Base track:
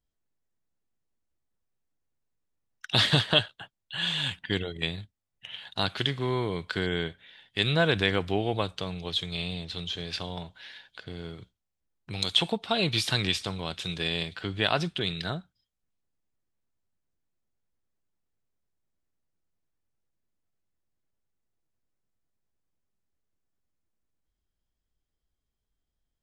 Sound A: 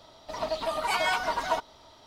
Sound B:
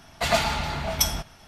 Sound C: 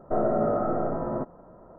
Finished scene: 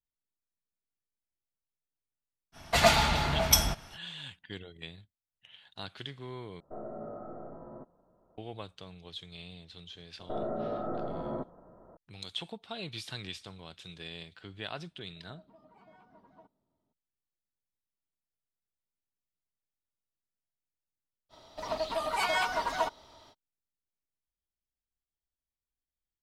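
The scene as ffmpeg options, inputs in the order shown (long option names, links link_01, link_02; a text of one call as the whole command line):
ffmpeg -i bed.wav -i cue0.wav -i cue1.wav -i cue2.wav -filter_complex "[3:a]asplit=2[link_01][link_02];[1:a]asplit=2[link_03][link_04];[0:a]volume=-14dB[link_05];[link_01]lowpass=1800[link_06];[link_02]alimiter=limit=-20.5dB:level=0:latency=1:release=71[link_07];[link_03]bandpass=frequency=190:width_type=q:width=1.9:csg=0[link_08];[link_05]asplit=2[link_09][link_10];[link_09]atrim=end=6.604[link_11];[link_06]atrim=end=1.78,asetpts=PTS-STARTPTS,volume=-17.5dB[link_12];[link_10]atrim=start=8.376[link_13];[2:a]atrim=end=1.47,asetpts=PTS-STARTPTS,afade=type=in:duration=0.05,afade=type=out:start_time=1.42:duration=0.05,adelay=2520[link_14];[link_07]atrim=end=1.78,asetpts=PTS-STARTPTS,volume=-6dB,afade=type=in:duration=0.004:curve=hsin,afade=type=out:start_time=1.776:duration=0.004:curve=hsin,adelay=10190[link_15];[link_08]atrim=end=2.06,asetpts=PTS-STARTPTS,volume=-14dB,afade=type=in:duration=0.004:curve=hsin,afade=type=out:start_time=2.056:duration=0.004:curve=hsin,adelay=14870[link_16];[link_04]atrim=end=2.06,asetpts=PTS-STARTPTS,volume=-2.5dB,afade=type=in:duration=0.05,afade=type=out:start_time=2.01:duration=0.05,adelay=21290[link_17];[link_11][link_12]acrossfade=duration=0.004:curve1=hsin:curve2=hsin[link_18];[link_18][link_13]acrossfade=duration=0.004:curve1=hsin:curve2=hsin[link_19];[link_19][link_14][link_15][link_16][link_17]amix=inputs=5:normalize=0" out.wav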